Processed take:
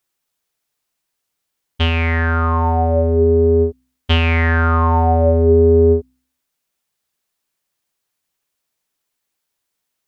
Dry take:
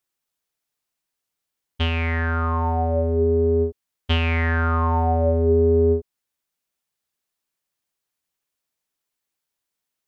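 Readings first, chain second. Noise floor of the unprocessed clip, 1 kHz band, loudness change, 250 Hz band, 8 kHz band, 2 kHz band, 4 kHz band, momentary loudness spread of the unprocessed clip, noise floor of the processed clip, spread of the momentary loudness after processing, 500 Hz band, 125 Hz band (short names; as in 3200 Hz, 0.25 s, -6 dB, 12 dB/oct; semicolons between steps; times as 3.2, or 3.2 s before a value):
-83 dBFS, +6.0 dB, +6.0 dB, +6.0 dB, n/a, +6.0 dB, +6.0 dB, 7 LU, -77 dBFS, 7 LU, +6.0 dB, +6.0 dB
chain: de-hum 64.11 Hz, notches 5; gain +6 dB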